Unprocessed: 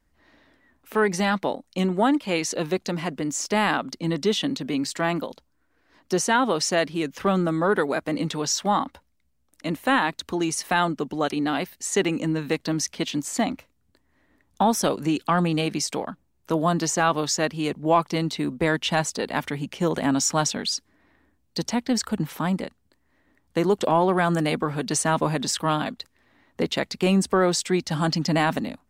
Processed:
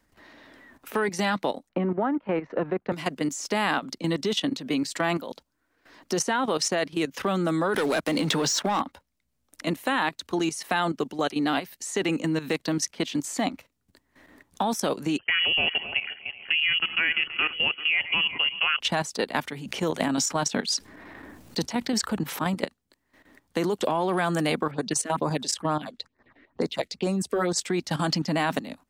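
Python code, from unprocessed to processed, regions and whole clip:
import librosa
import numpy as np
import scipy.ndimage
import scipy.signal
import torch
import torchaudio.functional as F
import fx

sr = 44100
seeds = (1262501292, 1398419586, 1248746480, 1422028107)

y = fx.chain(x, sr, fx.law_mismatch(coded='A'),
    fx.lowpass(hz=1600.0, slope=24),
    fx.band_squash(depth_pct=70), at=(1.69, 2.92))
y = fx.chain(y, sr, fx.leveller(passes=2),
    fx.band_squash(depth_pct=40), at=(7.74, 8.81))
y = fx.chain(y, sr, fx.reverse_delay_fb(ms=190, feedback_pct=50, wet_db=-12.5),
    fx.freq_invert(carrier_hz=3100), at=(15.18, 18.8))
y = fx.chain(y, sr, fx.chopper(hz=5.7, depth_pct=60, duty_pct=45),
    fx.env_flatten(amount_pct=50), at=(19.65, 22.65))
y = fx.chain(y, sr, fx.env_lowpass(base_hz=2300.0, full_db=-20.5),
    fx.phaser_stages(stages=4, low_hz=140.0, high_hz=3200.0, hz=2.2, feedback_pct=0), at=(24.71, 27.58))
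y = fx.level_steps(y, sr, step_db=13)
y = fx.low_shelf(y, sr, hz=100.0, db=-10.0)
y = fx.band_squash(y, sr, depth_pct=40)
y = y * librosa.db_to_amplitude(2.5)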